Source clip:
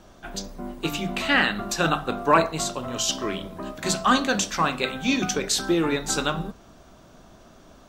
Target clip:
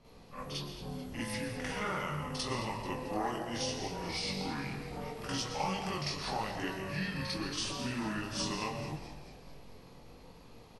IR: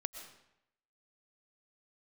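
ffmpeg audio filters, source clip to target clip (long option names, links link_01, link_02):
-filter_complex "[0:a]asetrate=32193,aresample=44100,flanger=delay=17.5:depth=4.6:speed=0.76,acrossover=split=1000|5900[link_01][link_02][link_03];[link_01]acompressor=threshold=-35dB:ratio=4[link_04];[link_02]acompressor=threshold=-40dB:ratio=4[link_05];[link_03]acompressor=threshold=-41dB:ratio=4[link_06];[link_04][link_05][link_06]amix=inputs=3:normalize=0,asplit=7[link_07][link_08][link_09][link_10][link_11][link_12][link_13];[link_08]adelay=219,afreqshift=-96,volume=-12.5dB[link_14];[link_09]adelay=438,afreqshift=-192,volume=-17.4dB[link_15];[link_10]adelay=657,afreqshift=-288,volume=-22.3dB[link_16];[link_11]adelay=876,afreqshift=-384,volume=-27.1dB[link_17];[link_12]adelay=1095,afreqshift=-480,volume=-32dB[link_18];[link_13]adelay=1314,afreqshift=-576,volume=-36.9dB[link_19];[link_07][link_14][link_15][link_16][link_17][link_18][link_19]amix=inputs=7:normalize=0,asplit=2[link_20][link_21];[1:a]atrim=start_sample=2205,highshelf=frequency=7300:gain=6,adelay=47[link_22];[link_21][link_22]afir=irnorm=-1:irlink=0,volume=7dB[link_23];[link_20][link_23]amix=inputs=2:normalize=0,volume=-8.5dB"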